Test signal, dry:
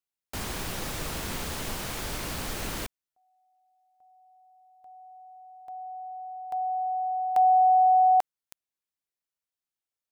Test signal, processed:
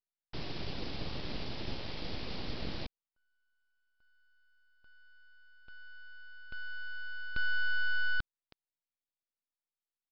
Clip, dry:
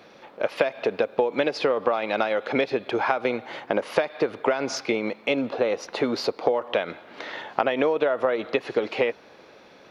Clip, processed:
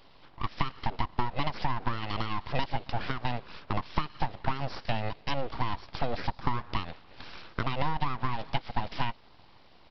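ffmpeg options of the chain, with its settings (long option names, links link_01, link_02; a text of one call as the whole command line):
ffmpeg -i in.wav -af "equalizer=frequency=1300:width_type=o:width=1.8:gain=-13.5,aresample=11025,aeval=exprs='abs(val(0))':channel_layout=same,aresample=44100" out.wav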